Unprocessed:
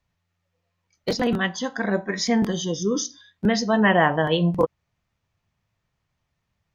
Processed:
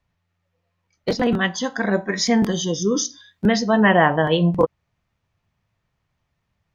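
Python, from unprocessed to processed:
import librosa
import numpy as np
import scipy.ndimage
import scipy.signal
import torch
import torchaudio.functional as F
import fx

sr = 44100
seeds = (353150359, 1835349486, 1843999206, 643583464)

y = fx.high_shelf(x, sr, hz=5400.0, db=fx.steps((0.0, -9.5), (1.41, 2.5), (3.57, -7.0)))
y = F.gain(torch.from_numpy(y), 3.0).numpy()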